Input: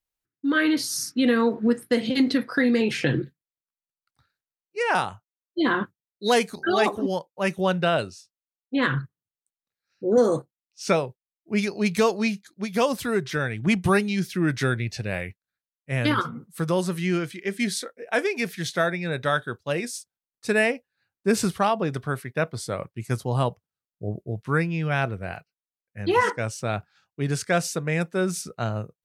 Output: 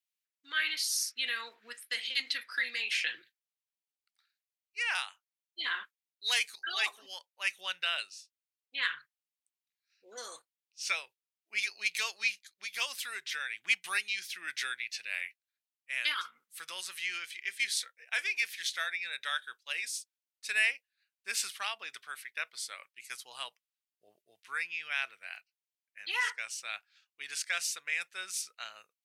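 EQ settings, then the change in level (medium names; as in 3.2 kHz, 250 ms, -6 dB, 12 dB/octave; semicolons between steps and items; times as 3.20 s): resonant high-pass 2.4 kHz, resonance Q 1.5; -3.5 dB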